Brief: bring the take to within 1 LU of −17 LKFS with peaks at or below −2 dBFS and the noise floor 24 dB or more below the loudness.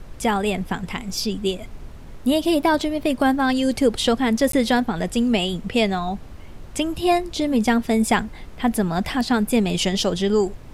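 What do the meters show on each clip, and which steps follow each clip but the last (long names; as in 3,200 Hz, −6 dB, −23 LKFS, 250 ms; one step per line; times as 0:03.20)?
number of dropouts 1; longest dropout 13 ms; background noise floor −39 dBFS; target noise floor −46 dBFS; integrated loudness −21.5 LKFS; sample peak −5.5 dBFS; target loudness −17.0 LKFS
→ repair the gap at 0:04.52, 13 ms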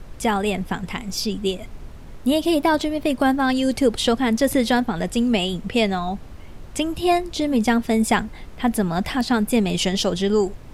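number of dropouts 0; background noise floor −39 dBFS; target noise floor −46 dBFS
→ noise reduction from a noise print 7 dB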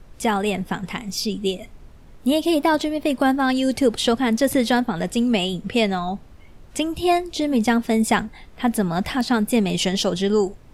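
background noise floor −45 dBFS; target noise floor −46 dBFS
→ noise reduction from a noise print 6 dB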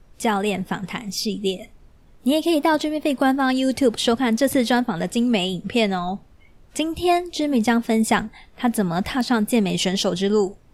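background noise floor −51 dBFS; integrated loudness −21.5 LKFS; sample peak −5.5 dBFS; target loudness −17.0 LKFS
→ level +4.5 dB
brickwall limiter −2 dBFS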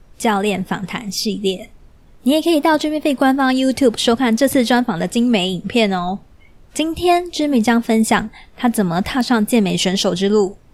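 integrated loudness −17.0 LKFS; sample peak −2.0 dBFS; background noise floor −47 dBFS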